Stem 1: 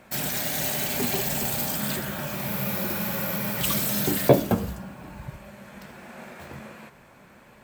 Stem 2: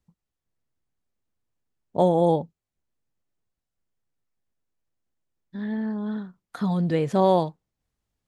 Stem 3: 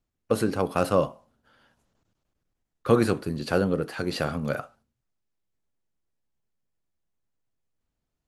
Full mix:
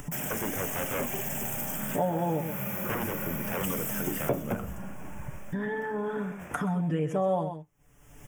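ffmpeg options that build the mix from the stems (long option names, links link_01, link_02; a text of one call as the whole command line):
ffmpeg -i stem1.wav -i stem2.wav -i stem3.wav -filter_complex "[0:a]agate=range=-33dB:threshold=-39dB:ratio=3:detection=peak,volume=0dB[link_01];[1:a]aecho=1:1:6.9:1,acompressor=mode=upward:threshold=-18dB:ratio=2.5,volume=1dB,asplit=2[link_02][link_03];[link_03]volume=-11dB[link_04];[2:a]aeval=exprs='0.1*(abs(mod(val(0)/0.1+3,4)-2)-1)':channel_layout=same,volume=1dB[link_05];[link_04]aecho=0:1:127:1[link_06];[link_01][link_02][link_05][link_06]amix=inputs=4:normalize=0,asuperstop=centerf=4200:order=4:qfactor=1.6,acompressor=threshold=-34dB:ratio=2" out.wav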